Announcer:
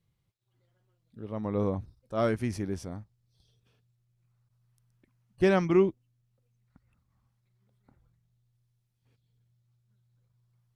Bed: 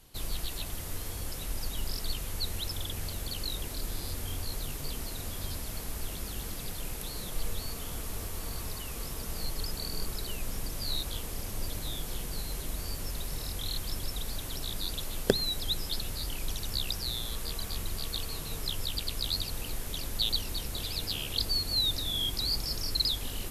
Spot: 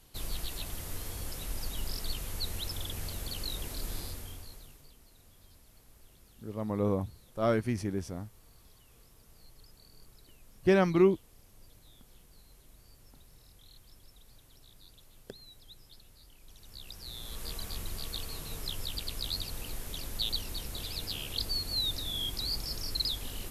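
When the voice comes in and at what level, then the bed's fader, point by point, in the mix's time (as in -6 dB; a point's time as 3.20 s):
5.25 s, -0.5 dB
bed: 3.99 s -2 dB
4.95 s -22 dB
16.41 s -22 dB
17.46 s -3.5 dB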